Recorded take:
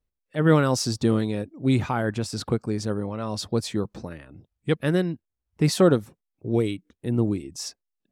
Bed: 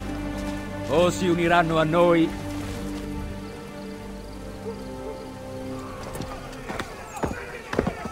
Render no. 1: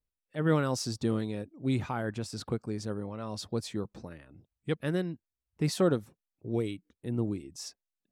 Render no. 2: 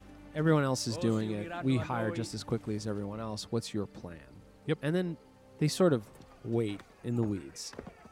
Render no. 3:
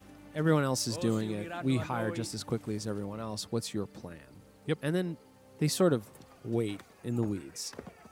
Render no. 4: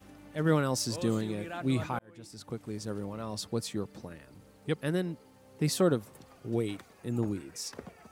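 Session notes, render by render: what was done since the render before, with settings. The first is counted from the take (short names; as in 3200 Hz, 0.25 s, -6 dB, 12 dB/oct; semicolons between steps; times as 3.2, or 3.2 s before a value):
gain -8 dB
add bed -21 dB
HPF 70 Hz; high shelf 8600 Hz +10 dB
1.99–3.06 fade in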